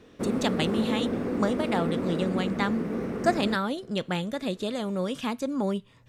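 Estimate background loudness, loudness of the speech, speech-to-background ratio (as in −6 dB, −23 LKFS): −30.5 LKFS, −29.5 LKFS, 1.0 dB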